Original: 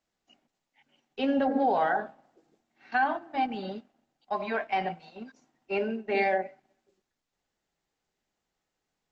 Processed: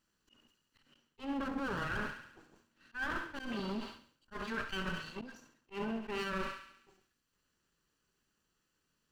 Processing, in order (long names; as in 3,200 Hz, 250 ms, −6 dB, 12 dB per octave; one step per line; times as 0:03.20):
lower of the sound and its delayed copy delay 0.68 ms
feedback echo with a high-pass in the loop 69 ms, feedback 59%, high-pass 710 Hz, level −13 dB
reversed playback
downward compressor 6 to 1, threshold −40 dBFS, peak gain reduction 16.5 dB
reversed playback
volume swells 113 ms
level that may fall only so fast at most 110 dB per second
level +4.5 dB